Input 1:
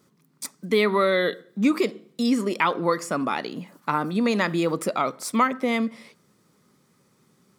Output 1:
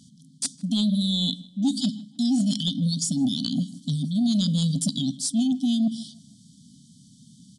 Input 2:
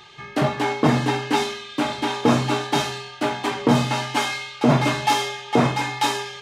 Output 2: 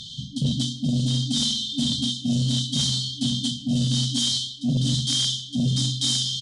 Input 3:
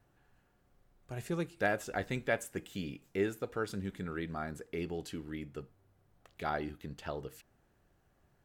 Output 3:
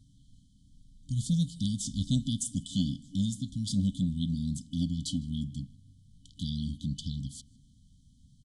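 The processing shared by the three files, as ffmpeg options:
-filter_complex "[0:a]afftfilt=real='re*(1-between(b*sr/4096,280,3000))':imag='im*(1-between(b*sr/4096,280,3000))':win_size=4096:overlap=0.75,areverse,acompressor=threshold=-31dB:ratio=10,areverse,aeval=exprs='0.1*sin(PI/2*1.78*val(0)/0.1)':c=same,asplit=2[a][b];[b]adelay=156,lowpass=f=3.6k:p=1,volume=-22dB,asplit=2[c][d];[d]adelay=156,lowpass=f=3.6k:p=1,volume=0.41,asplit=2[e][f];[f]adelay=156,lowpass=f=3.6k:p=1,volume=0.41[g];[a][c][e][g]amix=inputs=4:normalize=0,aresample=22050,aresample=44100,volume=3.5dB"

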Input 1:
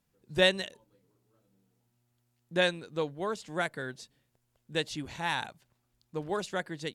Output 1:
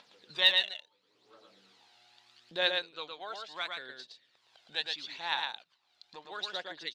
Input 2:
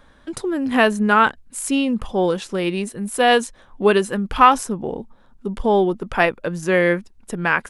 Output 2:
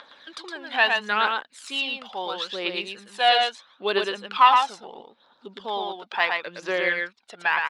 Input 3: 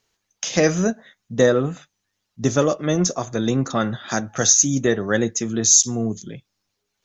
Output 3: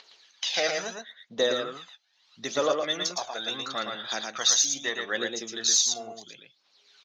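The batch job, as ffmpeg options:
-filter_complex "[0:a]highpass=640,acompressor=mode=upward:threshold=-40dB:ratio=2.5,lowpass=f=4k:t=q:w=3.2,aphaser=in_gain=1:out_gain=1:delay=1.5:decay=0.54:speed=0.75:type=triangular,asplit=2[a][b];[b]aecho=0:1:114:0.631[c];[a][c]amix=inputs=2:normalize=0,volume=-6.5dB"

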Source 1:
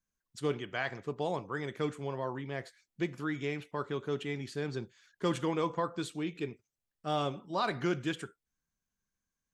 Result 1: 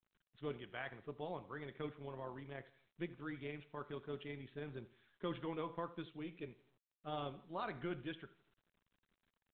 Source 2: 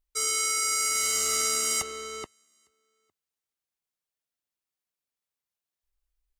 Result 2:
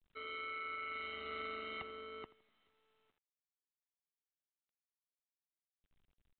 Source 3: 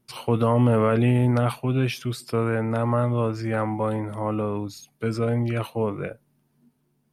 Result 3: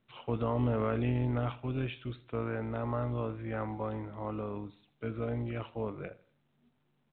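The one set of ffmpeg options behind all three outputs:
-af "aecho=1:1:82|164|246:0.106|0.0392|0.0145,tremolo=f=170:d=0.462,volume=-9dB" -ar 8000 -c:a pcm_mulaw

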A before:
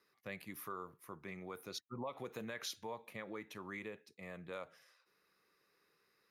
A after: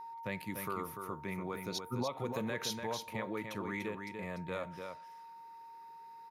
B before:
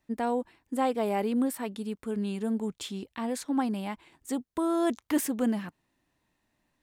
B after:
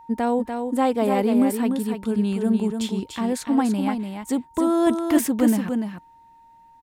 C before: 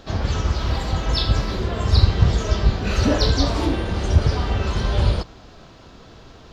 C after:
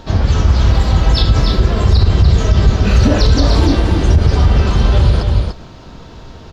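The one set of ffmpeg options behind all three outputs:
-filter_complex "[0:a]lowshelf=f=240:g=6.5,aeval=exprs='val(0)+0.00355*sin(2*PI*920*n/s)':c=same,asplit=2[a][b];[b]aecho=0:1:293:0.501[c];[a][c]amix=inputs=2:normalize=0,alimiter=level_in=6dB:limit=-1dB:release=50:level=0:latency=1,volume=-1dB"

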